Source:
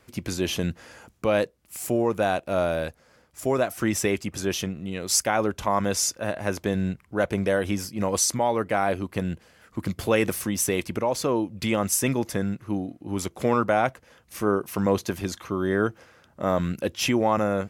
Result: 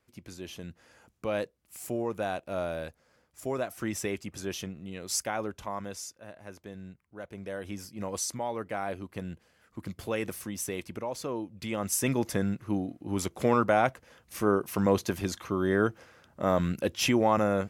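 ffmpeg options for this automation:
ffmpeg -i in.wav -af "volume=8dB,afade=type=in:start_time=0.67:duration=0.65:silence=0.446684,afade=type=out:start_time=5.26:duration=0.89:silence=0.316228,afade=type=in:start_time=7.29:duration=0.64:silence=0.375837,afade=type=in:start_time=11.68:duration=0.56:silence=0.398107" out.wav

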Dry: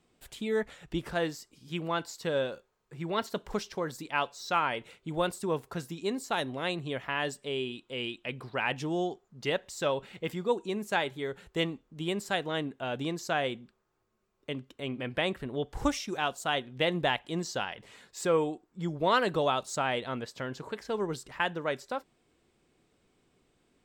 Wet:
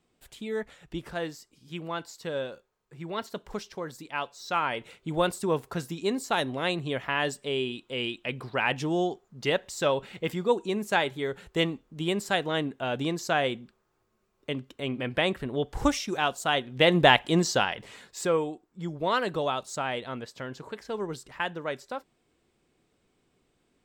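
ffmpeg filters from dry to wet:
ffmpeg -i in.wav -af "volume=11dB,afade=type=in:start_time=4.3:duration=0.8:silence=0.473151,afade=type=in:start_time=16.65:duration=0.52:silence=0.446684,afade=type=out:start_time=17.17:duration=1.26:silence=0.251189" out.wav

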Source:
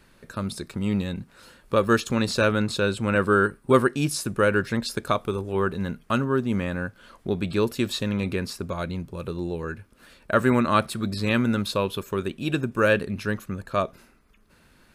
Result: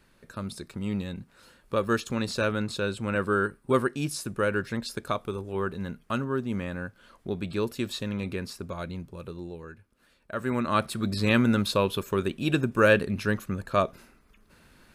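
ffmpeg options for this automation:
ffmpeg -i in.wav -af "volume=7.5dB,afade=type=out:start_time=9.01:duration=0.73:silence=0.446684,afade=type=in:start_time=10.35:duration=0.87:silence=0.223872" out.wav

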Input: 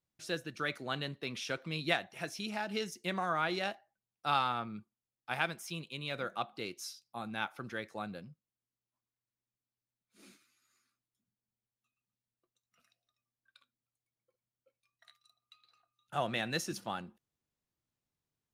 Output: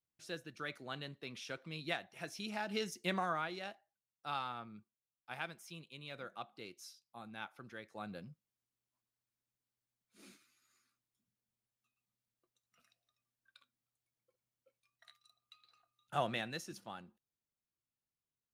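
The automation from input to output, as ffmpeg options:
ffmpeg -i in.wav -af "volume=9dB,afade=type=in:start_time=2.02:duration=1.11:silence=0.421697,afade=type=out:start_time=3.13:duration=0.37:silence=0.334965,afade=type=in:start_time=7.88:duration=0.4:silence=0.354813,afade=type=out:start_time=16.16:duration=0.42:silence=0.354813" out.wav

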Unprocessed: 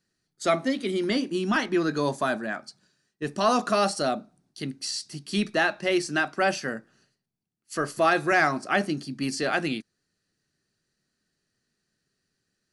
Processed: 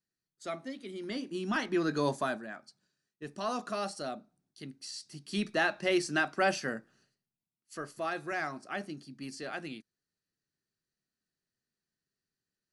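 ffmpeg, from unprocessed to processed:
ffmpeg -i in.wav -af "volume=4.5dB,afade=type=in:start_time=0.95:duration=1.14:silence=0.266073,afade=type=out:start_time=2.09:duration=0.38:silence=0.375837,afade=type=in:start_time=4.88:duration=0.94:silence=0.398107,afade=type=out:start_time=6.7:duration=1.19:silence=0.334965" out.wav

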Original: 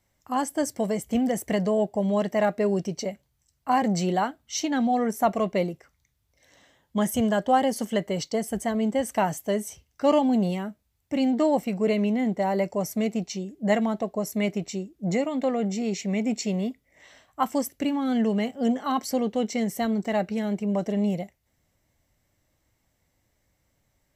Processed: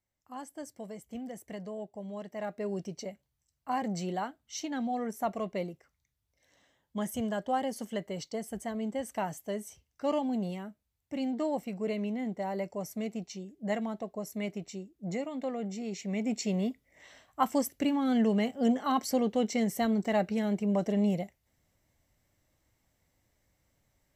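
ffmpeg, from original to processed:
ffmpeg -i in.wav -af "volume=-2.5dB,afade=type=in:start_time=2.3:duration=0.5:silence=0.446684,afade=type=in:start_time=15.9:duration=0.78:silence=0.446684" out.wav

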